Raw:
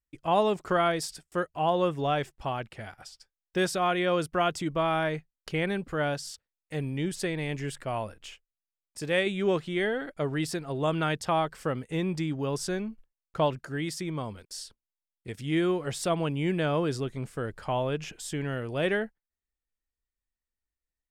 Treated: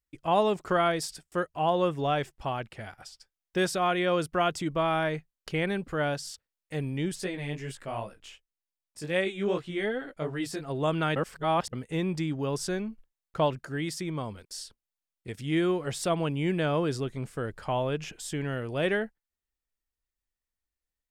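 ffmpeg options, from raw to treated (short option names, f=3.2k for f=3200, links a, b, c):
-filter_complex "[0:a]asplit=3[a][b][c];[a]afade=t=out:st=7.16:d=0.02[d];[b]flanger=delay=15.5:depth=4.7:speed=2.6,afade=t=in:st=7.16:d=0.02,afade=t=out:st=10.61:d=0.02[e];[c]afade=t=in:st=10.61:d=0.02[f];[d][e][f]amix=inputs=3:normalize=0,asplit=3[g][h][i];[g]atrim=end=11.162[j];[h]atrim=start=11.158:end=11.732,asetpts=PTS-STARTPTS,areverse[k];[i]atrim=start=11.728[l];[j][k]acrossfade=d=0.004:c1=hsin:c2=hsin[m];[m][l]acrossfade=d=0.004:c1=hsin:c2=hsin"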